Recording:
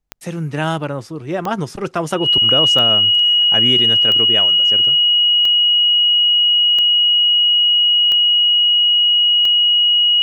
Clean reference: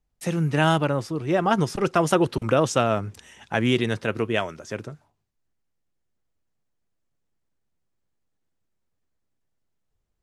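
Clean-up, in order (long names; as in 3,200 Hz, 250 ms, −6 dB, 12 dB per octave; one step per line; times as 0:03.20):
click removal
notch filter 2,900 Hz, Q 30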